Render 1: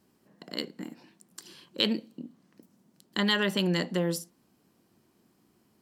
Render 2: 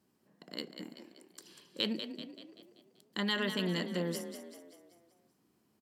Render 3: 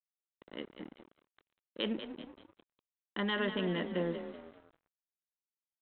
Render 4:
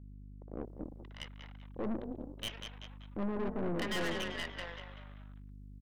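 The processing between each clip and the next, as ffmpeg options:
ffmpeg -i in.wav -filter_complex "[0:a]highpass=59,asplit=7[link_01][link_02][link_03][link_04][link_05][link_06][link_07];[link_02]adelay=192,afreqshift=33,volume=-9dB[link_08];[link_03]adelay=384,afreqshift=66,volume=-15dB[link_09];[link_04]adelay=576,afreqshift=99,volume=-21dB[link_10];[link_05]adelay=768,afreqshift=132,volume=-27.1dB[link_11];[link_06]adelay=960,afreqshift=165,volume=-33.1dB[link_12];[link_07]adelay=1152,afreqshift=198,volume=-39.1dB[link_13];[link_01][link_08][link_09][link_10][link_11][link_12][link_13]amix=inputs=7:normalize=0,volume=-7dB" out.wav
ffmpeg -i in.wav -af "lowpass=frequency=1600:poles=1,equalizer=frequency=93:width_type=o:width=1.4:gain=-13,aresample=8000,aeval=exprs='sgn(val(0))*max(abs(val(0))-0.00178,0)':channel_layout=same,aresample=44100,volume=4dB" out.wav
ffmpeg -i in.wav -filter_complex "[0:a]acrossover=split=800[link_01][link_02];[link_02]adelay=630[link_03];[link_01][link_03]amix=inputs=2:normalize=0,aeval=exprs='val(0)+0.00251*(sin(2*PI*50*n/s)+sin(2*PI*2*50*n/s)/2+sin(2*PI*3*50*n/s)/3+sin(2*PI*4*50*n/s)/4+sin(2*PI*5*50*n/s)/5)':channel_layout=same,aeval=exprs='(tanh(100*val(0)+0.75)-tanh(0.75))/100':channel_layout=same,volume=7.5dB" out.wav

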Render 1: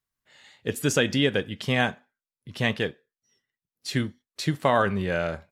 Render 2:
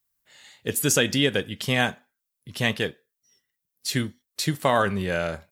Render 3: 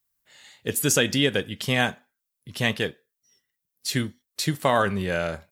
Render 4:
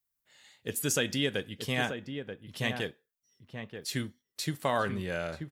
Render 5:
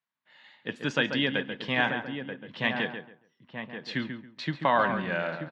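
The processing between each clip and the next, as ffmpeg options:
ffmpeg -i in.wav -af "aemphasis=mode=production:type=50kf" out.wav
ffmpeg -i in.wav -af anull out.wav
ffmpeg -i in.wav -filter_complex "[0:a]asplit=2[link_01][link_02];[link_02]adelay=932.9,volume=-7dB,highshelf=frequency=4000:gain=-21[link_03];[link_01][link_03]amix=inputs=2:normalize=0,volume=-8dB" out.wav
ffmpeg -i in.wav -filter_complex "[0:a]highpass=frequency=150:width=0.5412,highpass=frequency=150:width=1.3066,equalizer=frequency=420:width_type=q:width=4:gain=-7,equalizer=frequency=950:width_type=q:width=4:gain=7,equalizer=frequency=1700:width_type=q:width=4:gain=4,lowpass=frequency=3700:width=0.5412,lowpass=frequency=3700:width=1.3066,asplit=2[link_01][link_02];[link_02]adelay=138,lowpass=frequency=2000:poles=1,volume=-7dB,asplit=2[link_03][link_04];[link_04]adelay=138,lowpass=frequency=2000:poles=1,volume=0.24,asplit=2[link_05][link_06];[link_06]adelay=138,lowpass=frequency=2000:poles=1,volume=0.24[link_07];[link_01][link_03][link_05][link_07]amix=inputs=4:normalize=0,volume=3.5dB" out.wav

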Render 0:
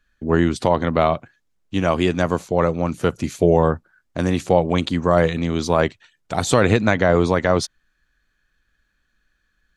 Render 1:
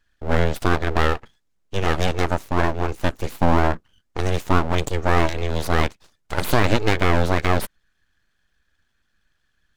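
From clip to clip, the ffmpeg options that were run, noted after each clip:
ffmpeg -i in.wav -af "aeval=exprs='abs(val(0))':channel_layout=same" out.wav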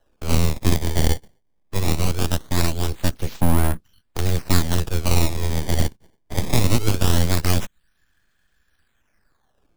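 ffmpeg -i in.wav -filter_complex "[0:a]acrusher=samples=19:mix=1:aa=0.000001:lfo=1:lforange=30.4:lforate=0.21,acrossover=split=250|3000[link_01][link_02][link_03];[link_02]acompressor=threshold=-47dB:ratio=1.5[link_04];[link_01][link_04][link_03]amix=inputs=3:normalize=0,volume=3dB" out.wav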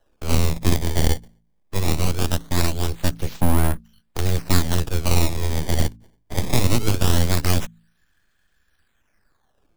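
ffmpeg -i in.wav -af "bandreject=frequency=55.8:width_type=h:width=4,bandreject=frequency=111.6:width_type=h:width=4,bandreject=frequency=167.4:width_type=h:width=4,bandreject=frequency=223.2:width_type=h:width=4,bandreject=frequency=279:width_type=h:width=4" out.wav

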